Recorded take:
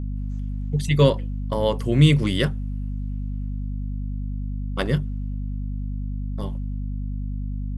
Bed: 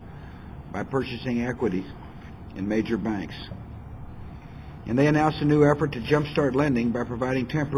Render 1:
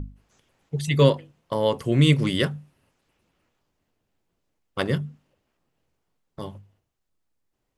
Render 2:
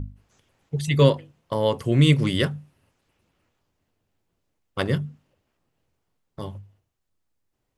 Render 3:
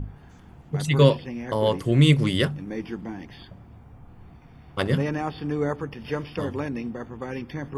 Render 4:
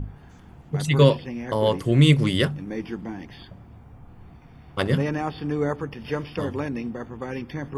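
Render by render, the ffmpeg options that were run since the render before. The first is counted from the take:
-af "bandreject=f=50:t=h:w=6,bandreject=f=100:t=h:w=6,bandreject=f=150:t=h:w=6,bandreject=f=200:t=h:w=6,bandreject=f=250:t=h:w=6"
-af "equalizer=f=95:w=2.4:g=5.5"
-filter_complex "[1:a]volume=0.422[s0];[0:a][s0]amix=inputs=2:normalize=0"
-af "volume=1.12,alimiter=limit=0.708:level=0:latency=1"

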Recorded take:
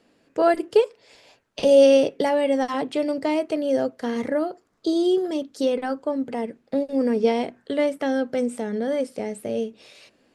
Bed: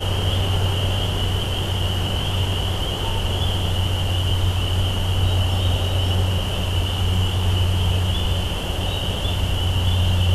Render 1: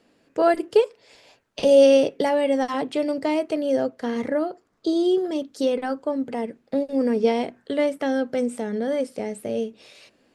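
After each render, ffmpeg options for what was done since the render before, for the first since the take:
-filter_complex "[0:a]asettb=1/sr,asplit=3[s0][s1][s2];[s0]atrim=end=3.754[s3];[s1]atrim=start=3.75:end=5.36,asetpts=PTS-STARTPTS,afade=t=in:d=0.004:c=qsin,afade=t=out:st=1.606:d=0.004:c=qsin,highshelf=f=6500:g=-5[s4];[s2]atrim=start=5.356[s5];[s3][s4]acrossfade=d=0.004:c1=hsin:c2=qsin[s6];[s6][s5]acrossfade=d=0.004:c1=qsin:c2=hsin"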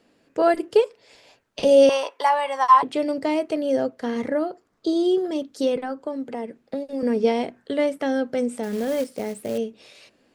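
-filter_complex "[0:a]asettb=1/sr,asplit=3[s0][s1][s2];[s0]atrim=end=1.894[s3];[s1]atrim=start=1.89:end=2.83,asetpts=PTS-STARTPTS,afade=t=in:d=0.004:c=qsin,afade=t=out:st=0.936:d=0.004:c=qsin,highpass=f=1000:t=q:w=11[s4];[s2]atrim=start=2.826[s5];[s3][s4]acrossfade=d=0.004:c1=hsin:c2=qsin[s6];[s6][s5]acrossfade=d=0.004:c1=qsin:c2=hsin,asettb=1/sr,asplit=3[s7][s8][s9];[s7]atrim=end=5.764[s10];[s8]atrim=start=5.76:end=7.03,asetpts=PTS-STARTPTS,afade=t=in:d=0.004:c=qsin,afade=t=out:st=1.266:d=0.004:c=qsin,acrossover=split=220|2000[s11][s12][s13];[s11]acompressor=threshold=0.00708:ratio=4[s14];[s12]acompressor=threshold=0.0447:ratio=4[s15];[s13]acompressor=threshold=0.00282:ratio=4[s16];[s14][s15][s16]amix=inputs=3:normalize=0[s17];[s9]atrim=start=7.026[s18];[s10][s17]acrossfade=d=0.004:c1=hsin:c2=qsin[s19];[s19][s18]acrossfade=d=0.004:c1=qsin:c2=hsin,asettb=1/sr,asplit=3[s20][s21][s22];[s20]atrim=end=8.634[s23];[s21]atrim=start=8.63:end=9.58,asetpts=PTS-STARTPTS,afade=t=in:d=0.004:c=qsin,afade=t=out:st=0.946:d=0.004:c=qsin,acrusher=bits=4:mode=log:mix=0:aa=0.000001[s24];[s22]atrim=start=9.576[s25];[s23][s24]acrossfade=d=0.004:c1=hsin:c2=qsin[s26];[s26][s25]acrossfade=d=0.004:c1=qsin:c2=hsin"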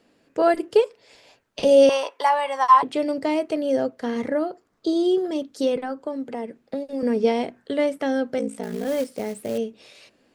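-filter_complex "[0:a]asettb=1/sr,asplit=3[s0][s1][s2];[s0]atrim=end=8.384[s3];[s1]atrim=start=8.38:end=8.86,asetpts=PTS-STARTPTS,afade=t=in:d=0.004:c=qsin,afade=t=out:st=0.476:d=0.004:c=qsin,aeval=exprs='val(0)*sin(2*PI*28*n/s)':c=same[s4];[s2]atrim=start=8.856[s5];[s3][s4]acrossfade=d=0.004:c1=hsin:c2=qsin[s6];[s6][s5]acrossfade=d=0.004:c1=qsin:c2=hsin"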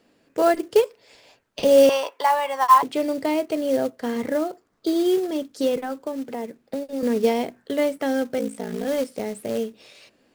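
-af "acrusher=bits=5:mode=log:mix=0:aa=0.000001"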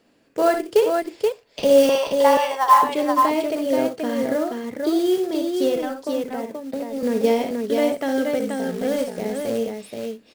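-af "aecho=1:1:61|85|479:0.422|0.15|0.631"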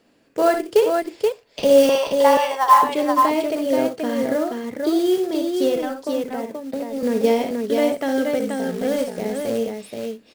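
-af "volume=1.12"

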